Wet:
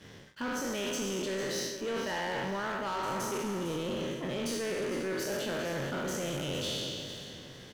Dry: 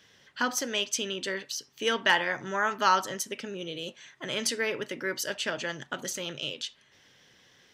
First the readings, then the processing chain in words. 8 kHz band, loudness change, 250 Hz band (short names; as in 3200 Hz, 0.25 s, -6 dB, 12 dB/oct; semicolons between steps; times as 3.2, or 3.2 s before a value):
-5.0 dB, -4.5 dB, +3.0 dB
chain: spectral trails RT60 1.54 s; tilt shelf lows +8 dB, about 750 Hz; reverse; compressor 12:1, threshold -35 dBFS, peak gain reduction 17.5 dB; reverse; sample leveller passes 3; feedback echo 0.454 s, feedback 33%, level -11.5 dB; gain -3 dB